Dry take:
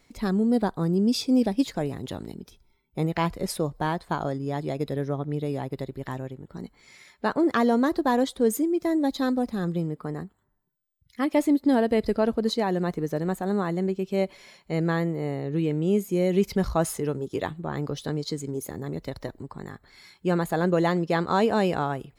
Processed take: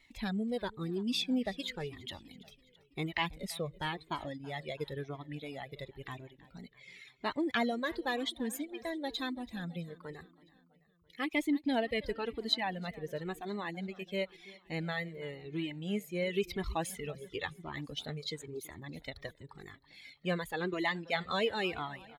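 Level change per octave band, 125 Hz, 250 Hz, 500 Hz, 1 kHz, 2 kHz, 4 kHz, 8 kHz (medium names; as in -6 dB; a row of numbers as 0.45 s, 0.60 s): -13.5 dB, -12.5 dB, -12.0 dB, -10.0 dB, -3.0 dB, -0.5 dB, -9.5 dB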